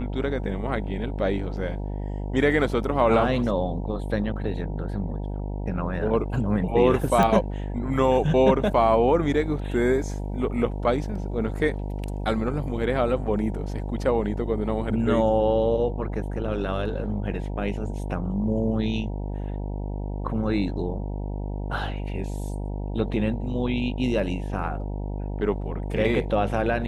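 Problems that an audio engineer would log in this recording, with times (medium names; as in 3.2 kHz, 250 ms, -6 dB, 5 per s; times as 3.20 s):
buzz 50 Hz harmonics 19 -30 dBFS
7.23 s: pop -10 dBFS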